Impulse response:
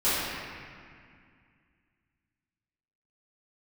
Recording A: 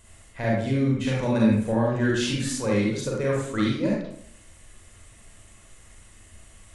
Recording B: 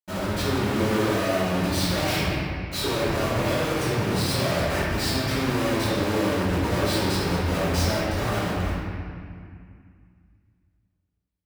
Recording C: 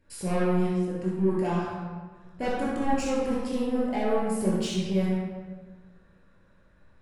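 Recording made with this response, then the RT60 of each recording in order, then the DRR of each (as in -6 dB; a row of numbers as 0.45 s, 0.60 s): B; 0.65 s, 2.1 s, 1.4 s; -4.0 dB, -15.5 dB, -6.5 dB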